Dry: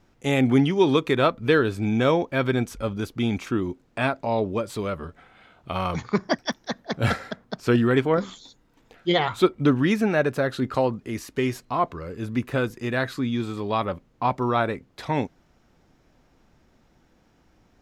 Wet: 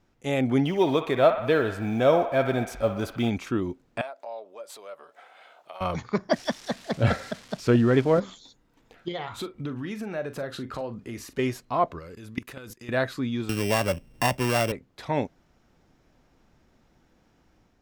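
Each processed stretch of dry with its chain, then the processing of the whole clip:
0:00.65–0:03.30: mu-law and A-law mismatch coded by mu + parametric band 690 Hz +7 dB 0.42 octaves + delay with a band-pass on its return 61 ms, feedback 64%, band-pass 1,400 Hz, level −7 dB
0:04.01–0:05.81: downward compressor 3 to 1, threshold −44 dBFS + high-pass with resonance 620 Hz, resonance Q 2.3 + high-shelf EQ 4,100 Hz +6.5 dB
0:06.33–0:08.20: spike at every zero crossing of −25 dBFS + low-pass filter 5,300 Hz + low-shelf EQ 330 Hz +6 dB
0:09.08–0:11.39: downward compressor 4 to 1, threshold −30 dBFS + double-tracking delay 42 ms −12 dB
0:11.99–0:12.89: high-shelf EQ 2,200 Hz +9.5 dB + output level in coarse steps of 20 dB
0:13.49–0:14.72: samples sorted by size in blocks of 16 samples + low-shelf EQ 120 Hz +11.5 dB + multiband upward and downward compressor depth 70%
whole clip: dynamic equaliser 600 Hz, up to +7 dB, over −38 dBFS, Q 2.9; automatic gain control gain up to 4 dB; level −6 dB

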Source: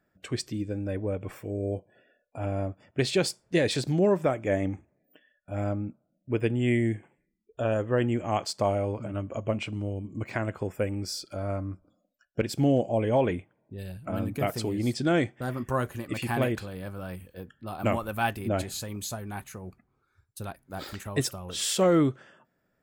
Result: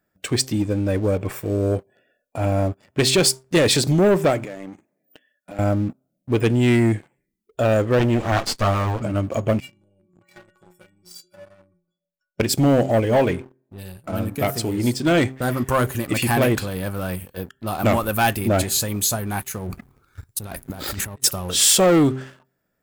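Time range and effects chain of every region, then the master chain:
0:04.44–0:05.59: high-pass filter 160 Hz 24 dB per octave + downward compressor 5 to 1, threshold −43 dBFS
0:07.99–0:09.02: lower of the sound and its delayed copy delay 9 ms + high-frequency loss of the air 66 metres
0:09.60–0:12.40: low-shelf EQ 260 Hz +3 dB + downward compressor 2 to 1, threshold −36 dBFS + stiff-string resonator 170 Hz, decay 0.55 s, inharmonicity 0.03
0:13.00–0:15.21: hum removal 70.47 Hz, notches 26 + expander for the loud parts, over −36 dBFS
0:19.67–0:21.24: compressor whose output falls as the input rises −47 dBFS + low-shelf EQ 190 Hz +7.5 dB
whole clip: hum removal 131.1 Hz, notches 3; leveller curve on the samples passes 2; high-shelf EQ 6,900 Hz +9.5 dB; level +3 dB

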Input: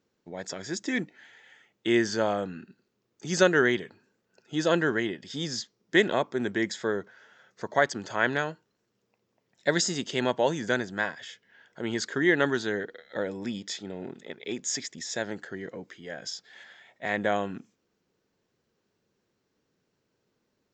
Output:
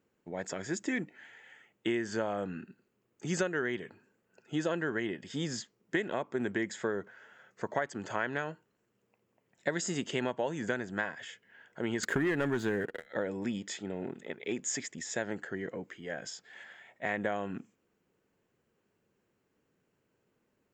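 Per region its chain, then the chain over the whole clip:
0:12.03–0:13.06: low-shelf EQ 180 Hz +10 dB + leveller curve on the samples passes 2
whole clip: flat-topped bell 4,600 Hz −8.5 dB 1 octave; downward compressor 8 to 1, threshold −28 dBFS

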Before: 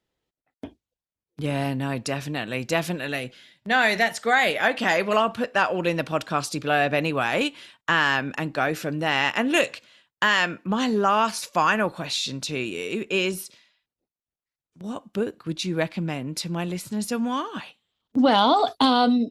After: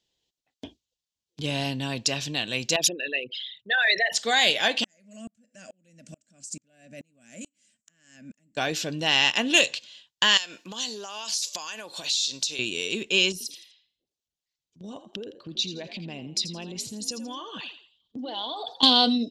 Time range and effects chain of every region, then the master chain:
0:02.76–0:04.13: spectral envelope exaggerated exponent 3 + RIAA equalisation recording + transient designer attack −1 dB, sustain +3 dB
0:04.84–0:08.57: drawn EQ curve 140 Hz 0 dB, 220 Hz +13 dB, 410 Hz −12 dB, 610 Hz +1 dB, 920 Hz −25 dB, 1,400 Hz −8 dB, 2,100 Hz −3 dB, 3,600 Hz −20 dB, 8,100 Hz +14 dB, 12,000 Hz −2 dB + downward compressor 2 to 1, threshold −40 dBFS + tremolo with a ramp in dB swelling 2.3 Hz, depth 37 dB
0:10.37–0:12.59: bass and treble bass −13 dB, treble +11 dB + downward compressor, threshold −32 dBFS
0:13.32–0:18.83: spectral envelope exaggerated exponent 1.5 + downward compressor 4 to 1, threshold −31 dBFS + echo with shifted repeats 83 ms, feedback 34%, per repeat +53 Hz, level −12 dB
whole clip: flat-topped bell 4,600 Hz +13.5 dB; notch filter 1,300 Hz, Q 6.2; level −4 dB

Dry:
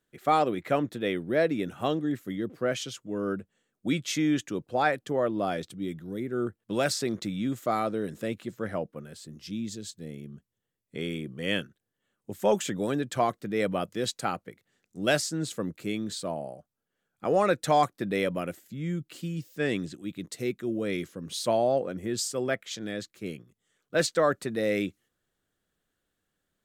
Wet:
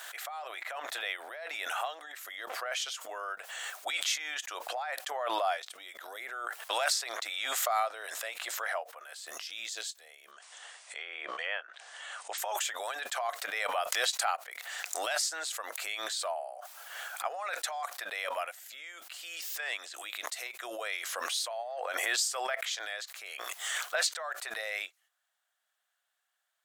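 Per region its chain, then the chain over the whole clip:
0:10.31–0:12.38: linear-phase brick-wall low-pass 9,700 Hz + treble cut that deepens with the level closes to 1,600 Hz, closed at −28 dBFS
whole clip: compressor whose output falls as the input rises −28 dBFS, ratio −0.5; elliptic high-pass filter 690 Hz, stop band 80 dB; background raised ahead of every attack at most 22 dB per second

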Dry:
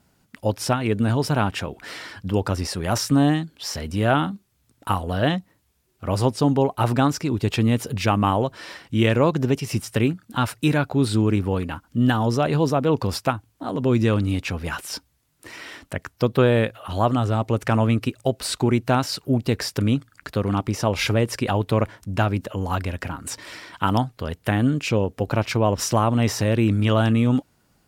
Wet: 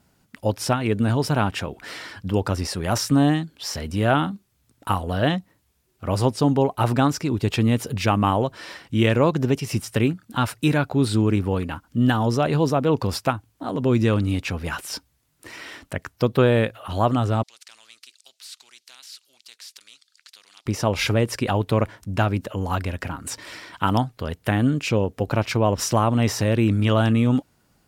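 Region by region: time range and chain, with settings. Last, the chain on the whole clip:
0:17.43–0:20.66: four-pole ladder band-pass 4,800 Hz, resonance 50% + every bin compressed towards the loudest bin 2 to 1
whole clip: no processing

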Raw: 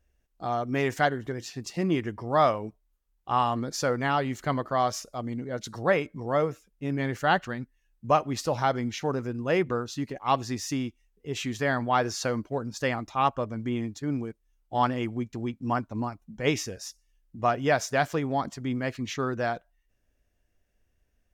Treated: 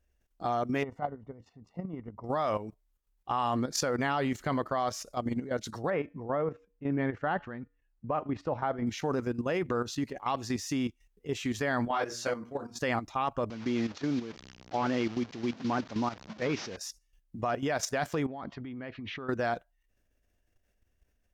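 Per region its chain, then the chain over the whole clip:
0:00.83–0:02.24: Savitzky-Golay smoothing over 65 samples + parametric band 350 Hz −11.5 dB 0.34 octaves + output level in coarse steps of 11 dB
0:05.90–0:08.87: low-pass filter 1,800 Hz + tuned comb filter 95 Hz, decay 0.39 s, harmonics odd, mix 30%
0:11.88–0:12.79: low-shelf EQ 190 Hz −5.5 dB + hum removal 118.6 Hz, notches 20 + micro pitch shift up and down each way 23 cents
0:13.50–0:16.77: linear delta modulator 32 kbit/s, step −38 dBFS + high-pass filter 140 Hz
0:18.26–0:19.29: inverse Chebyshev low-pass filter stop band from 12,000 Hz, stop band 70 dB + downward compressor, threshold −32 dBFS
whole clip: parametric band 130 Hz −5 dB 0.24 octaves; brickwall limiter −19 dBFS; output level in coarse steps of 11 dB; level +4 dB

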